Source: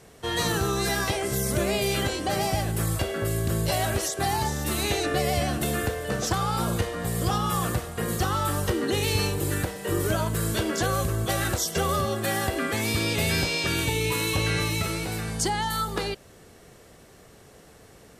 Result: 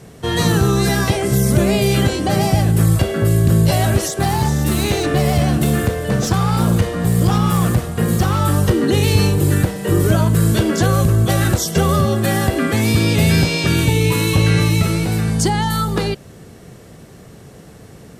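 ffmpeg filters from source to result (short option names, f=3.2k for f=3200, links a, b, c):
-filter_complex "[0:a]asettb=1/sr,asplit=3[a][b][c];[a]atrim=end=4.094[d];[b]atrim=start=4.09:end=8.4,asetpts=PTS-STARTPTS,afade=t=in:d=0.004:c=qsin,afade=t=out:st=4.306:d=0.004:c=qsin,aeval=exprs='clip(val(0),-1,0.0562)':c=same[e];[c]atrim=start=8.396[f];[d][e]acrossfade=d=0.004:c1=hsin:c2=qsin[g];[g][f]acrossfade=d=0.004:c1=qsin:c2=hsin,equalizer=f=150:t=o:w=2.1:g=10.5,acontrast=47"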